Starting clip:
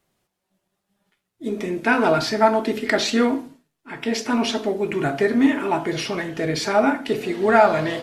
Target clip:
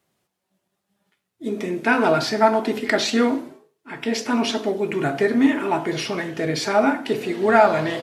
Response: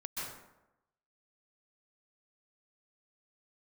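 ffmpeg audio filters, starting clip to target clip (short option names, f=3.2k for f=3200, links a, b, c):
-filter_complex "[0:a]highpass=83,asplit=4[a][b][c][d];[b]adelay=98,afreqshift=52,volume=-23dB[e];[c]adelay=196,afreqshift=104,volume=-28.7dB[f];[d]adelay=294,afreqshift=156,volume=-34.4dB[g];[a][e][f][g]amix=inputs=4:normalize=0"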